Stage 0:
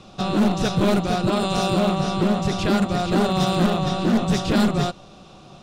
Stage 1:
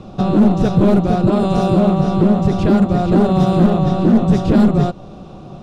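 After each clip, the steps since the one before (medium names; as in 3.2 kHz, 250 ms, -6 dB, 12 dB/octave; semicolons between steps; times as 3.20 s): tilt shelf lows +8.5 dB, about 1.2 kHz; in parallel at +1 dB: compression, threshold -21 dBFS, peak gain reduction 13 dB; on the sum: trim -2.5 dB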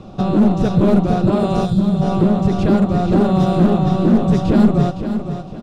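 time-frequency box 1.66–2.01 s, 220–3100 Hz -27 dB; feedback delay 512 ms, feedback 33%, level -9.5 dB; trim -1.5 dB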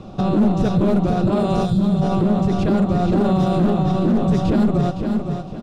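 peak limiter -10 dBFS, peak gain reduction 6.5 dB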